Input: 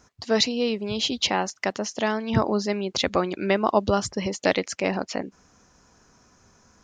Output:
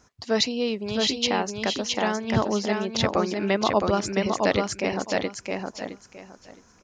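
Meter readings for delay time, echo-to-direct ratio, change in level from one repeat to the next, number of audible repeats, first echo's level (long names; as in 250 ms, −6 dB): 665 ms, −3.5 dB, −14.0 dB, 3, −3.5 dB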